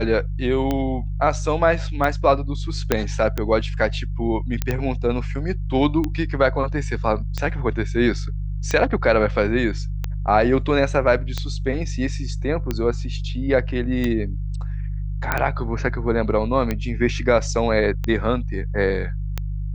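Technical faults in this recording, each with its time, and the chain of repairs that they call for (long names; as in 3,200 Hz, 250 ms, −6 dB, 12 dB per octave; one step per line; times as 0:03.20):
mains hum 50 Hz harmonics 3 −26 dBFS
scratch tick 45 rpm −10 dBFS
0:02.92: click −2 dBFS
0:04.62: click −8 dBFS
0:15.32: click −6 dBFS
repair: click removal
hum removal 50 Hz, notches 3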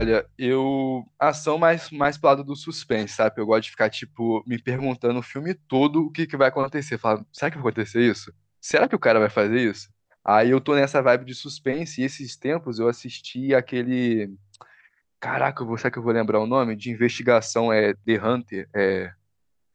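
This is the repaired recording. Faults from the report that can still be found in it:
0:02.92: click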